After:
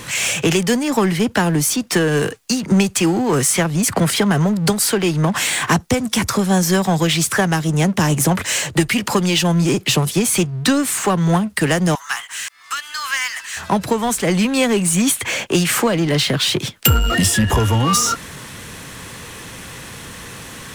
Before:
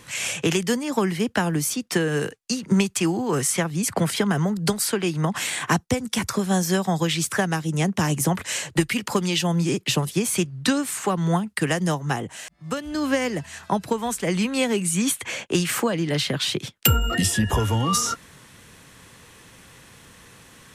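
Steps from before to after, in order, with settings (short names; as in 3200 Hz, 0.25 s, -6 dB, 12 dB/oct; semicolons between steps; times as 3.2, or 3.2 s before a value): 11.95–13.57 steep high-pass 1100 Hz 36 dB/oct; power-law curve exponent 0.7; gain +2 dB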